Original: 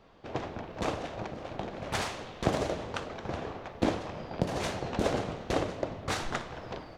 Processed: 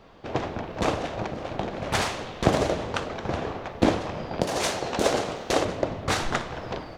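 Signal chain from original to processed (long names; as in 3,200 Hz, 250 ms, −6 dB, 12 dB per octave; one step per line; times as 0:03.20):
0:04.41–0:05.65: bass and treble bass −9 dB, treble +6 dB
level +7 dB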